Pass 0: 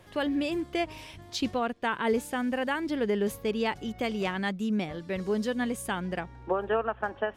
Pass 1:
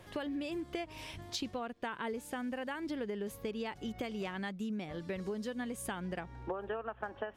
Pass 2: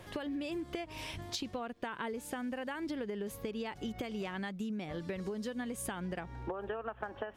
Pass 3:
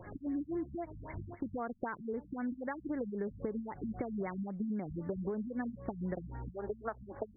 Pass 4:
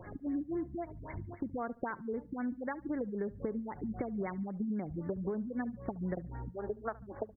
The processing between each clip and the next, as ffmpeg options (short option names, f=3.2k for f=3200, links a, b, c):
-af "acompressor=threshold=-35dB:ratio=10"
-af "acompressor=threshold=-38dB:ratio=6,volume=3.5dB"
-af "afftfilt=real='re*lt(b*sr/1024,230*pow(2300/230,0.5+0.5*sin(2*PI*3.8*pts/sr)))':imag='im*lt(b*sr/1024,230*pow(2300/230,0.5+0.5*sin(2*PI*3.8*pts/sr)))':win_size=1024:overlap=0.75,volume=2dB"
-af "aecho=1:1:72|144:0.0891|0.0267,volume=1dB"